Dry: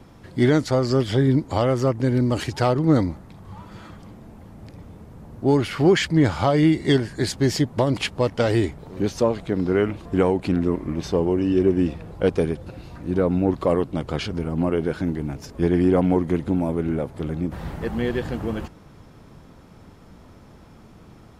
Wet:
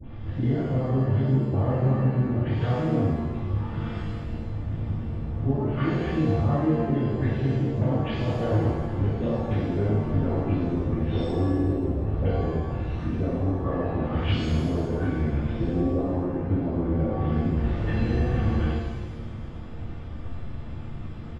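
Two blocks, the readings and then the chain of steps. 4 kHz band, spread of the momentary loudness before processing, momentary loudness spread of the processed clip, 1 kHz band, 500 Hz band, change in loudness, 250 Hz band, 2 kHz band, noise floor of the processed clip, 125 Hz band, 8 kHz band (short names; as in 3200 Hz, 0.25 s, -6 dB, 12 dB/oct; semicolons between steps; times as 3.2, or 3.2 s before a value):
-10.5 dB, 11 LU, 12 LU, -5.0 dB, -7.5 dB, -4.0 dB, -4.5 dB, -7.5 dB, -35 dBFS, +1.0 dB, under -15 dB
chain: treble ducked by the level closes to 850 Hz, closed at -18.5 dBFS; resonant low shelf 190 Hz +7 dB, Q 1.5; notch 910 Hz, Q 24; comb 3.4 ms, depth 33%; dynamic EQ 3100 Hz, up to +6 dB, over -45 dBFS, Q 0.81; compressor, threshold -26 dBFS, peak gain reduction 15 dB; LFO notch sine 8.6 Hz 240–2400 Hz; dispersion highs, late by 48 ms, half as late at 1400 Hz; downsampling 8000 Hz; shimmer reverb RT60 1.3 s, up +7 st, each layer -8 dB, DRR -10.5 dB; gain -6 dB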